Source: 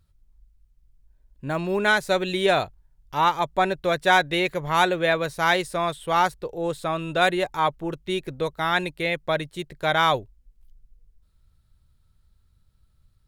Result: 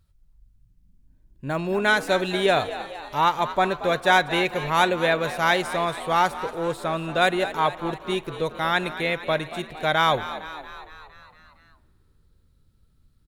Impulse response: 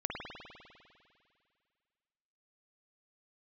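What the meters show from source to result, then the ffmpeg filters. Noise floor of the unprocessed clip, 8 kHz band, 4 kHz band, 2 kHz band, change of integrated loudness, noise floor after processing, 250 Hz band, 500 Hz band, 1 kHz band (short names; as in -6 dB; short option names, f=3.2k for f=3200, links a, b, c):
-63 dBFS, +0.5 dB, +0.5 dB, +0.5 dB, 0.0 dB, -61 dBFS, +0.5 dB, +0.5 dB, +0.5 dB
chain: -filter_complex "[0:a]asplit=8[a][b][c][d][e][f][g][h];[b]adelay=230,afreqshift=73,volume=-13.5dB[i];[c]adelay=460,afreqshift=146,volume=-17.8dB[j];[d]adelay=690,afreqshift=219,volume=-22.1dB[k];[e]adelay=920,afreqshift=292,volume=-26.4dB[l];[f]adelay=1150,afreqshift=365,volume=-30.7dB[m];[g]adelay=1380,afreqshift=438,volume=-35dB[n];[h]adelay=1610,afreqshift=511,volume=-39.3dB[o];[a][i][j][k][l][m][n][o]amix=inputs=8:normalize=0,asplit=2[p][q];[1:a]atrim=start_sample=2205,adelay=43[r];[q][r]afir=irnorm=-1:irlink=0,volume=-23.5dB[s];[p][s]amix=inputs=2:normalize=0"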